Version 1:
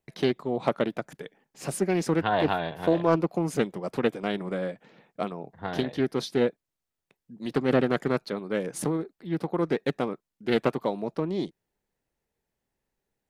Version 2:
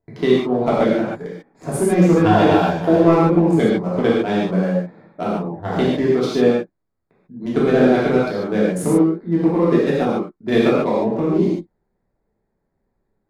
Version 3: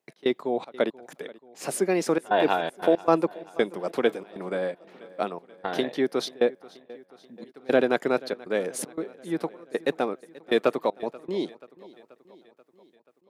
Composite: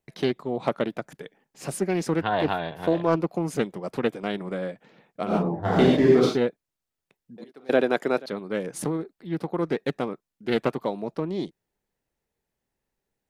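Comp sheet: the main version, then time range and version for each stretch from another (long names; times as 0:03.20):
1
0:05.30–0:06.33: punch in from 2, crossfade 0.10 s
0:07.38–0:08.26: punch in from 3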